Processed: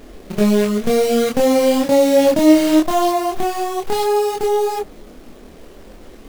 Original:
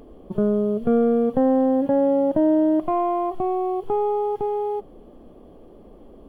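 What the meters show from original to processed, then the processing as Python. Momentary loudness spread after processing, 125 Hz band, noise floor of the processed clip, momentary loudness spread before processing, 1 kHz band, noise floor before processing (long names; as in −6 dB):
10 LU, +5.5 dB, −41 dBFS, 6 LU, +5.0 dB, −46 dBFS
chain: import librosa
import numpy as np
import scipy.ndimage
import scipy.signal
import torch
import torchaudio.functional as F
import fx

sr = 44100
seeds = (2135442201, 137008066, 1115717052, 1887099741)

y = fx.quant_companded(x, sr, bits=4)
y = fx.chorus_voices(y, sr, voices=6, hz=0.88, base_ms=26, depth_ms=2.9, mix_pct=45)
y = y * 10.0 ** (7.0 / 20.0)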